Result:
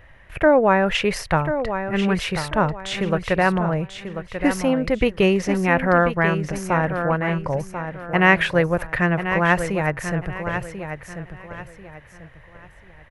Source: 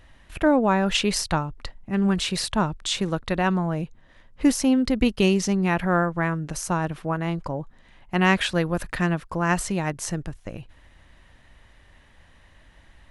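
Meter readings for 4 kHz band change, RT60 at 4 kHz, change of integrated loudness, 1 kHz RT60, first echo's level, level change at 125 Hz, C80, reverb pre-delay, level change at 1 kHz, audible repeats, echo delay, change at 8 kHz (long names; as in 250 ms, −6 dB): −1.5 dB, no reverb audible, +3.0 dB, no reverb audible, −9.0 dB, +2.5 dB, no reverb audible, no reverb audible, +5.0 dB, 3, 1,040 ms, −6.0 dB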